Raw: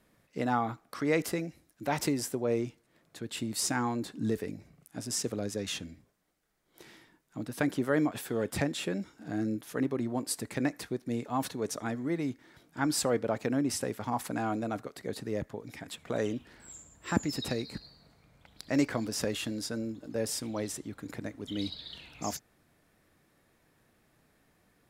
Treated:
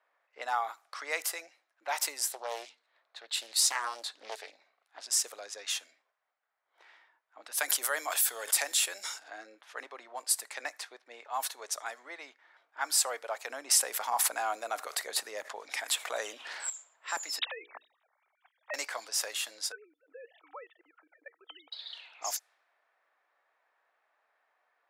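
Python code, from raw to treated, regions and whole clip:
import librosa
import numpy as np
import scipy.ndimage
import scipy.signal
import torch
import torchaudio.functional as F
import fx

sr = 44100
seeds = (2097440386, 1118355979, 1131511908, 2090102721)

y = fx.chain(x, sr, fx.peak_eq(hz=4000.0, db=9.0, octaves=0.45),
    fx.hum_notches(base_hz=50, count=5),
    fx.doppler_dist(depth_ms=0.56), at=(2.27, 5.07))
y = fx.chain(y, sr, fx.high_shelf(hz=4000.0, db=11.0),
    fx.sustainer(db_per_s=73.0), at=(7.43, 9.3))
y = fx.chain(y, sr, fx.peak_eq(hz=96.0, db=8.0, octaves=2.9),
    fx.env_flatten(amount_pct=50), at=(13.49, 16.7))
y = fx.chain(y, sr, fx.sine_speech(),
    fx.hum_notches(base_hz=60, count=8), at=(17.39, 18.74))
y = fx.chain(y, sr, fx.sine_speech(),
    fx.level_steps(step_db=20),
    fx.small_body(hz=(470.0, 1300.0), ring_ms=85, db=11), at=(19.72, 21.72))
y = scipy.signal.sosfilt(scipy.signal.butter(4, 690.0, 'highpass', fs=sr, output='sos'), y)
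y = fx.env_lowpass(y, sr, base_hz=1600.0, full_db=-34.5)
y = fx.high_shelf(y, sr, hz=5600.0, db=9.0)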